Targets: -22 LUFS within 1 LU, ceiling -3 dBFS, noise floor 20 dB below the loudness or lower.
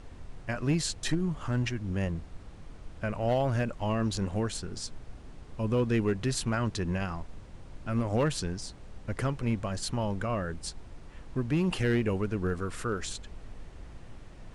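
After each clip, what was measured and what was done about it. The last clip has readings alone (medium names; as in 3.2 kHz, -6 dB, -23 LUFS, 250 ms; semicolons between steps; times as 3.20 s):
clipped samples 0.5%; clipping level -20.0 dBFS; noise floor -48 dBFS; noise floor target -52 dBFS; loudness -31.5 LUFS; peak level -20.0 dBFS; loudness target -22.0 LUFS
-> clip repair -20 dBFS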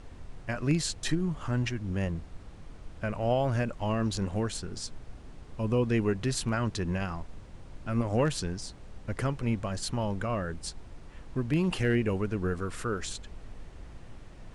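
clipped samples 0.0%; noise floor -48 dBFS; noise floor target -51 dBFS
-> noise print and reduce 6 dB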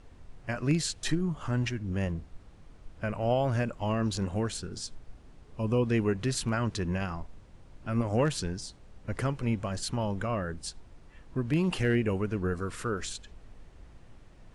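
noise floor -54 dBFS; loudness -31.0 LUFS; peak level -14.5 dBFS; loudness target -22.0 LUFS
-> trim +9 dB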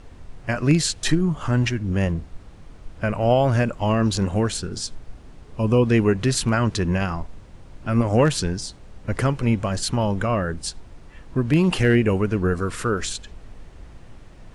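loudness -22.0 LUFS; peak level -5.5 dBFS; noise floor -45 dBFS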